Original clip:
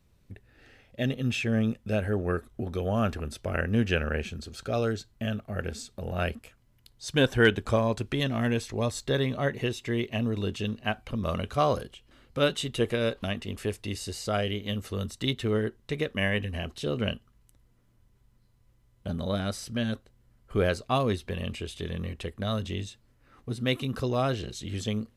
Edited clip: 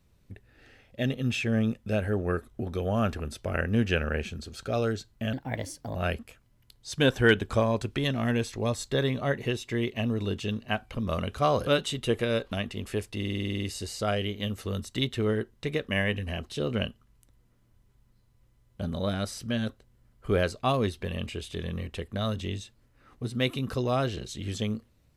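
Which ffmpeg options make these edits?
-filter_complex "[0:a]asplit=13[a][b][c][d][e][f][g][h][i][j][k][l][m];[a]atrim=end=5.334[n];[b]atrim=start=5.33:end=6.11,asetpts=PTS-STARTPTS,asetrate=55566,aresample=44100[o];[c]atrim=start=6.106:end=11.832[p];[d]atrim=start=12.378:end=13.932[q];[e]atrim=start=13.878:end=13.932[r];[f]atrim=start=13.878:end=13.932[s];[g]atrim=start=13.878:end=13.932[t];[h]atrim=start=13.878:end=13.932[u];[i]atrim=start=13.878:end=13.932[v];[j]atrim=start=13.878:end=13.932[w];[k]atrim=start=13.878:end=13.932[x];[l]atrim=start=13.878:end=13.932[y];[m]atrim=start=13.878[z];[n][o]acrossfade=d=0.004:c1=hsin:c2=hsin[aa];[aa][p]acrossfade=d=0.004:c1=hsin:c2=hsin[ab];[ab][q]acrossfade=d=0.004:c1=hsin:c2=hsin[ac];[ac][r]acrossfade=d=0.004:c1=hsin:c2=hsin[ad];[ad][s]acrossfade=d=0.004:c1=hsin:c2=hsin[ae];[ae][t]acrossfade=d=0.004:c1=hsin:c2=hsin[af];[af][u]acrossfade=d=0.004:c1=hsin:c2=hsin[ag];[ag][v]acrossfade=d=0.004:c1=hsin:c2=hsin[ah];[ah][w]acrossfade=d=0.004:c1=hsin:c2=hsin[ai];[ai][x]acrossfade=d=0.004:c1=hsin:c2=hsin[aj];[aj][y]acrossfade=d=0.004:c1=hsin:c2=hsin[ak];[ak][z]acrossfade=d=0.004:c1=hsin:c2=hsin"

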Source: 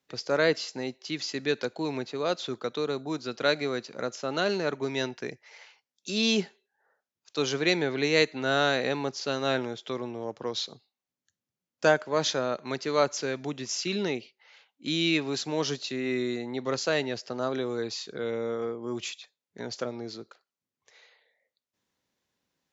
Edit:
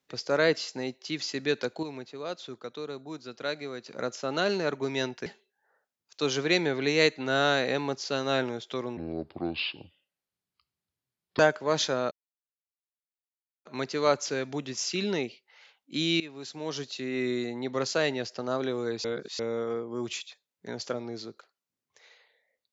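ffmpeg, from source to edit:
-filter_complex "[0:a]asplit=10[a][b][c][d][e][f][g][h][i][j];[a]atrim=end=1.832[k];[b]atrim=start=1.828:end=3.862,asetpts=PTS-STARTPTS,volume=-7.5dB[l];[c]atrim=start=3.858:end=5.262[m];[d]atrim=start=6.418:end=10.134[n];[e]atrim=start=10.13:end=11.85,asetpts=PTS-STARTPTS,asetrate=31311,aresample=44100[o];[f]atrim=start=11.846:end=12.57,asetpts=PTS-STARTPTS,afade=t=out:st=0.72:d=0.004:c=hsin,apad=pad_dur=1.54[p];[g]atrim=start=12.57:end=15.12,asetpts=PTS-STARTPTS,afade=t=in:d=0.004:c=hsin,afade=t=out:st=2.546:d=0.004:c=hsin:silence=0.133352[q];[h]atrim=start=15.12:end=17.962,asetpts=PTS-STARTPTS,afade=t=in:d=1.11:silence=0.133352[r];[i]atrim=start=17.958:end=18.312,asetpts=PTS-STARTPTS,areverse[s];[j]atrim=start=18.308[t];[k][l]acrossfade=d=0.004:c1=hsin:c2=hsin[u];[u][m]acrossfade=d=0.004:c1=hsin:c2=hsin[v];[v][n]acrossfade=d=0.004:c1=hsin:c2=hsin[w];[w][o]acrossfade=d=0.004:c1=hsin:c2=hsin[x];[p][q][r]concat=n=3:v=0:a=1[y];[x][y]acrossfade=d=0.004:c1=hsin:c2=hsin[z];[z][s]acrossfade=d=0.004:c1=hsin:c2=hsin[aa];[aa][t]acrossfade=d=0.004:c1=hsin:c2=hsin"

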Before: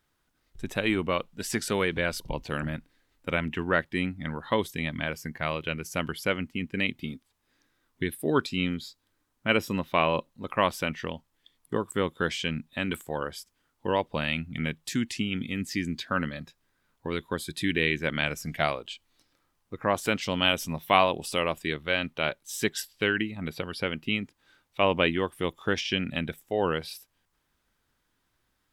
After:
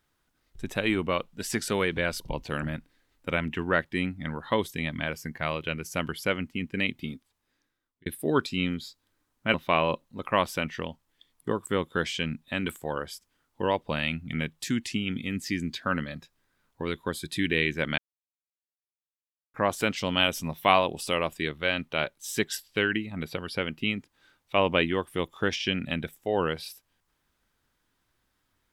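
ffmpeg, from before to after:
-filter_complex "[0:a]asplit=5[a][b][c][d][e];[a]atrim=end=8.06,asetpts=PTS-STARTPTS,afade=t=out:st=7.11:d=0.95[f];[b]atrim=start=8.06:end=9.542,asetpts=PTS-STARTPTS,afade=t=in:d=0.004:c=hsin[g];[c]atrim=start=9.788:end=18.23,asetpts=PTS-STARTPTS,afade=t=out:st=8.438:d=0.004:c=hsin[h];[d]atrim=start=18.23:end=19.79,asetpts=PTS-STARTPTS,volume=0[i];[e]atrim=start=19.79,asetpts=PTS-STARTPTS,afade=t=in:d=0.004:c=hsin[j];[f][g]concat=n=2:v=0:a=1[k];[h][i][j]concat=n=3:v=0:a=1[l];[k][l]acrossfade=d=0.004:c1=hsin:c2=hsin"

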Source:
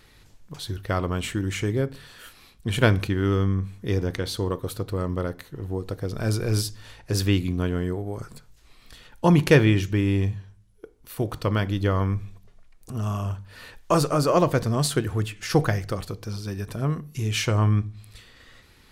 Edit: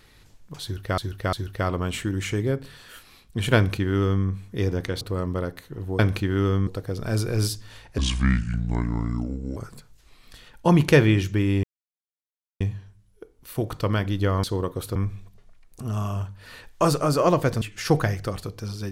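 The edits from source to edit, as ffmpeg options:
-filter_complex "[0:a]asplit=12[a][b][c][d][e][f][g][h][i][j][k][l];[a]atrim=end=0.982[m];[b]atrim=start=0.628:end=0.982[n];[c]atrim=start=0.628:end=4.312[o];[d]atrim=start=4.828:end=5.812[p];[e]atrim=start=2.858:end=3.542[q];[f]atrim=start=5.808:end=7.124[r];[g]atrim=start=7.12:end=8.15,asetpts=PTS-STARTPTS,asetrate=28665,aresample=44100[s];[h]atrim=start=8.146:end=10.22,asetpts=PTS-STARTPTS,afade=t=out:st=2.07:d=0.004:c=hsin,apad=pad_dur=0.97[t];[i]atrim=start=10.22:end=12.052,asetpts=PTS-STARTPTS,afade=t=in:d=0.004:c=hsin[u];[j]atrim=start=4.308:end=4.832[v];[k]atrim=start=12.048:end=14.712[w];[l]atrim=start=15.258[x];[m][n]acrossfade=d=0.004:c1=hsin:c2=hsin[y];[y][o]acrossfade=d=0.004:c1=hsin:c2=hsin[z];[z][p]acrossfade=d=0.004:c1=hsin:c2=hsin[aa];[aa][q]acrossfade=d=0.004:c1=hsin:c2=hsin[ab];[ab][r]acrossfade=d=0.004:c1=hsin:c2=hsin[ac];[ac][s]acrossfade=d=0.004:c1=hsin:c2=hsin[ad];[t][u]concat=n=2:v=0:a=1[ae];[ad][ae]acrossfade=d=0.004:c1=hsin:c2=hsin[af];[af][v]acrossfade=d=0.004:c1=hsin:c2=hsin[ag];[ag][w]acrossfade=d=0.004:c1=hsin:c2=hsin[ah];[ah][x]acrossfade=d=0.004:c1=hsin:c2=hsin"

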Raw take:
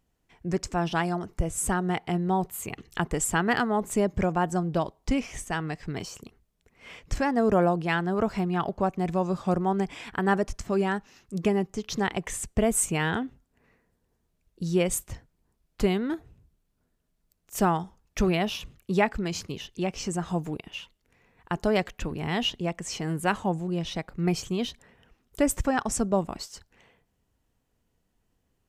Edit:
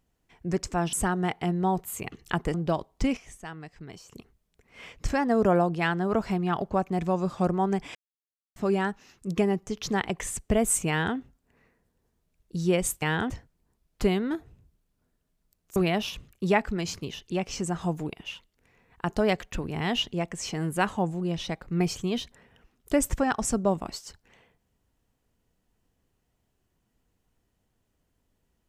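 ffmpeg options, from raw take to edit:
-filter_complex "[0:a]asplit=10[a][b][c][d][e][f][g][h][i][j];[a]atrim=end=0.932[k];[b]atrim=start=1.588:end=3.202[l];[c]atrim=start=4.608:end=5.242[m];[d]atrim=start=5.238:end=6.192,asetpts=PTS-STARTPTS,volume=-10dB[n];[e]atrim=start=6.188:end=10.02,asetpts=PTS-STARTPTS,afade=t=out:st=3.828:d=0.004:c=hsin[o];[f]atrim=start=10.02:end=10.63,asetpts=PTS-STARTPTS,volume=0[p];[g]atrim=start=10.63:end=15.092,asetpts=PTS-STARTPTS,afade=t=in:d=0.004:c=hsin[q];[h]atrim=start=12.958:end=13.242[r];[i]atrim=start=15.088:end=17.552[s];[j]atrim=start=18.228[t];[k][l]acrossfade=d=0.004:c1=hsin:c2=hsin[u];[u][m]acrossfade=d=0.004:c1=hsin:c2=hsin[v];[v][n]acrossfade=d=0.004:c1=hsin:c2=hsin[w];[o][p][q]concat=n=3:v=0:a=1[x];[w][x]acrossfade=d=0.004:c1=hsin:c2=hsin[y];[y][r]acrossfade=d=0.004:c1=hsin:c2=hsin[z];[z][s]acrossfade=d=0.004:c1=hsin:c2=hsin[aa];[aa][t]acrossfade=d=0.004:c1=hsin:c2=hsin"

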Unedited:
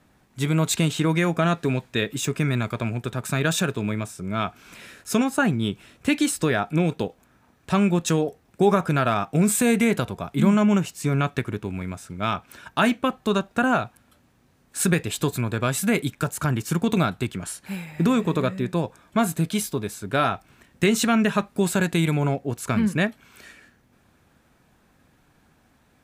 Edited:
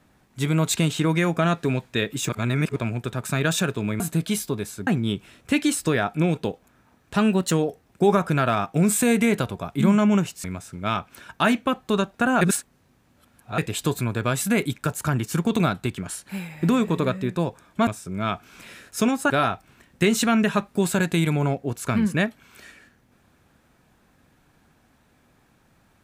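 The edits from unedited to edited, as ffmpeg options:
-filter_complex "[0:a]asplit=12[a][b][c][d][e][f][g][h][i][j][k][l];[a]atrim=end=2.292[m];[b]atrim=start=2.288:end=2.762,asetpts=PTS-STARTPTS,areverse[n];[c]atrim=start=2.758:end=4.002[o];[d]atrim=start=19.238:end=20.112[p];[e]atrim=start=5.428:end=7.724[q];[f]atrim=start=7.72:end=8.11,asetpts=PTS-STARTPTS,asetrate=47628,aresample=44100[r];[g]atrim=start=8.106:end=11.032[s];[h]atrim=start=11.808:end=13.782[t];[i]atrim=start=13.778:end=14.952,asetpts=PTS-STARTPTS,areverse[u];[j]atrim=start=14.948:end=19.242[v];[k]atrim=start=3.998:end=5.432[w];[l]atrim=start=20.108[x];[m][n]acrossfade=d=0.004:c1=hsin:c2=hsin[y];[y][o]acrossfade=d=0.004:c1=hsin:c2=hsin[z];[z][p]acrossfade=d=0.004:c1=hsin:c2=hsin[aa];[aa][q]acrossfade=d=0.004:c1=hsin:c2=hsin[ab];[ab][r]acrossfade=d=0.004:c1=hsin:c2=hsin[ac];[ac][s]acrossfade=d=0.004:c1=hsin:c2=hsin[ad];[ad][t]acrossfade=d=0.004:c1=hsin:c2=hsin[ae];[ae][u]acrossfade=d=0.004:c1=hsin:c2=hsin[af];[af][v]acrossfade=d=0.004:c1=hsin:c2=hsin[ag];[ag][w]acrossfade=d=0.004:c1=hsin:c2=hsin[ah];[ah][x]acrossfade=d=0.004:c1=hsin:c2=hsin"

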